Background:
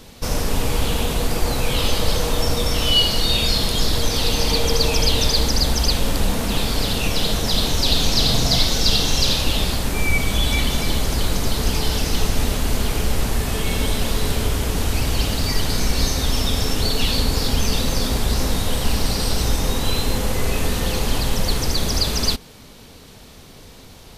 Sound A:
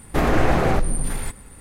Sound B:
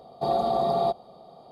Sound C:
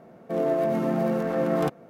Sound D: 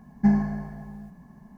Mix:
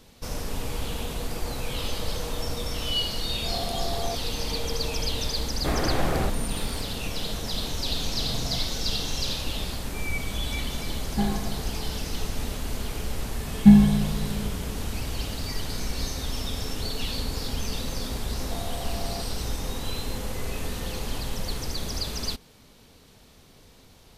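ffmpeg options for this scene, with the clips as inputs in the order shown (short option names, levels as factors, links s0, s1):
-filter_complex "[2:a]asplit=2[s0][s1];[4:a]asplit=2[s2][s3];[0:a]volume=0.299[s4];[s0]dynaudnorm=f=190:g=3:m=2.24[s5];[s2]aecho=1:1:2.6:0.57[s6];[s3]bass=f=250:g=11,treble=f=4000:g=-15[s7];[s1]acompressor=threshold=0.0355:ratio=6:attack=3.2:release=140:knee=1:detection=peak[s8];[s5]atrim=end=1.51,asetpts=PTS-STARTPTS,volume=0.158,afade=t=in:d=0.004:c=hsin,afade=t=out:st=1.506:d=0.004:c=hsin,adelay=3230[s9];[1:a]atrim=end=1.6,asetpts=PTS-STARTPTS,volume=0.422,afade=t=in:d=0.004:c=hsin,afade=t=out:st=1.596:d=0.004:c=hsin,adelay=5500[s10];[s6]atrim=end=1.57,asetpts=PTS-STARTPTS,volume=0.891,afade=t=in:d=0.004:c=hsin,afade=t=out:st=1.566:d=0.004:c=hsin,adelay=10940[s11];[s7]atrim=end=1.57,asetpts=PTS-STARTPTS,afade=t=in:d=0.004:c=hsin,afade=t=out:st=1.566:d=0.004:c=hsin,adelay=13420[s12];[s8]atrim=end=1.51,asetpts=PTS-STARTPTS,volume=0.473,afade=t=in:d=0.004:c=hsin,afade=t=out:st=1.506:d=0.004:c=hsin,adelay=18300[s13];[s4][s9][s10][s11][s12][s13]amix=inputs=6:normalize=0"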